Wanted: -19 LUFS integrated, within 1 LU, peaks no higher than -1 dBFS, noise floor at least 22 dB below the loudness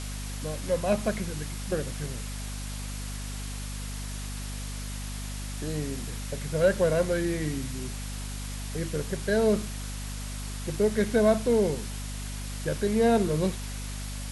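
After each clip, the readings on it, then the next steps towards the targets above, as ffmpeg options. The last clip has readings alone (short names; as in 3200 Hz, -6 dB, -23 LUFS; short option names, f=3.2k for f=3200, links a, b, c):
hum 50 Hz; harmonics up to 250 Hz; hum level -33 dBFS; noise floor -35 dBFS; noise floor target -52 dBFS; loudness -29.5 LUFS; peak -11.5 dBFS; loudness target -19.0 LUFS
-> -af "bandreject=f=50:t=h:w=4,bandreject=f=100:t=h:w=4,bandreject=f=150:t=h:w=4,bandreject=f=200:t=h:w=4,bandreject=f=250:t=h:w=4"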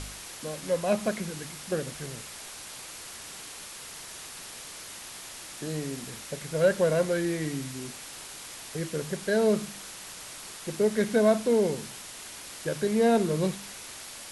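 hum none; noise floor -43 dBFS; noise floor target -52 dBFS
-> -af "afftdn=nr=9:nf=-43"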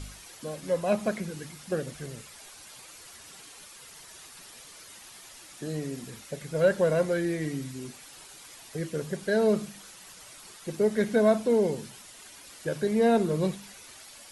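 noise floor -49 dBFS; noise floor target -50 dBFS
-> -af "afftdn=nr=6:nf=-49"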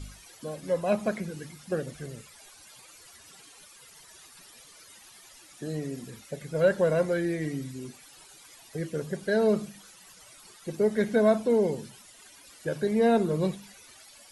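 noise floor -53 dBFS; loudness -28.0 LUFS; peak -12.0 dBFS; loudness target -19.0 LUFS
-> -af "volume=9dB"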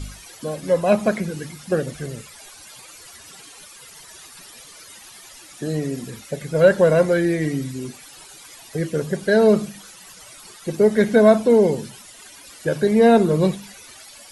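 loudness -19.0 LUFS; peak -3.0 dBFS; noise floor -44 dBFS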